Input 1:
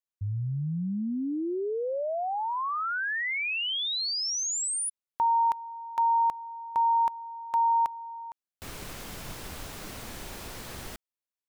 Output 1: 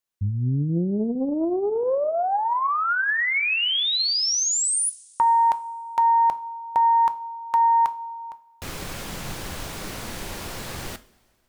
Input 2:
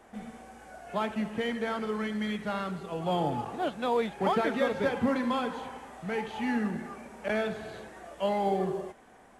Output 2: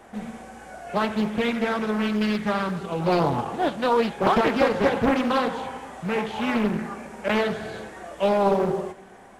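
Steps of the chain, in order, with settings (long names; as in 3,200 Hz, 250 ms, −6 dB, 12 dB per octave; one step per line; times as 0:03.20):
coupled-rooms reverb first 0.34 s, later 2.2 s, from −19 dB, DRR 11 dB
highs frequency-modulated by the lows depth 0.94 ms
level +7 dB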